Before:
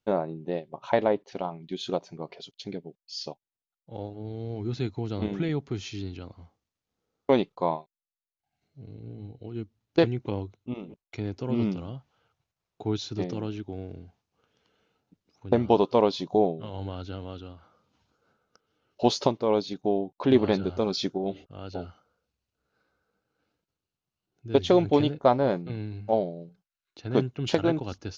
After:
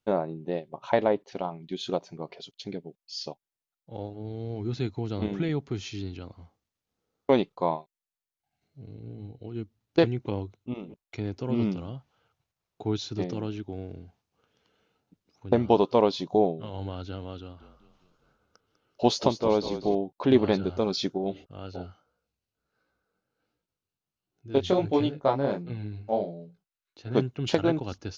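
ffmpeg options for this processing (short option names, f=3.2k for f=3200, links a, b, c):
-filter_complex "[0:a]asettb=1/sr,asplit=3[a][b][c];[a]atrim=end=17.404[d];[b]atrim=start=17.4:end=19.95,asetpts=PTS-STARTPTS,afade=t=in:d=0.004:c=qsin,afade=t=out:st=2.546:d=0.004:c=qsin,asplit=7[e][f][g][h][i][j][k];[f]adelay=198,afreqshift=-33,volume=-11.5dB[l];[g]adelay=396,afreqshift=-66,volume=-17.2dB[m];[h]adelay=594,afreqshift=-99,volume=-22.9dB[n];[i]adelay=792,afreqshift=-132,volume=-28.5dB[o];[j]adelay=990,afreqshift=-165,volume=-34.2dB[p];[k]adelay=1188,afreqshift=-198,volume=-39.9dB[q];[e][l][m][n][o][p][q]amix=inputs=7:normalize=0,atrim=end_sample=112455[r];[c]atrim=start=19.946[s];[d][r]acrossfade=d=0.004:c1=hsin:c2=qsin[t];[t][s]acrossfade=d=0.004:c1=qsin:c2=hsin,asplit=3[u][v][w];[u]afade=t=out:st=21.66:d=0.02[x];[v]flanger=delay=16.5:depth=6:speed=1.4,afade=t=in:st=21.66:d=0.02,afade=t=out:st=27.15:d=0.02[y];[w]afade=t=in:st=27.15:d=0.02[z];[x][y][z]amix=inputs=3:normalize=0"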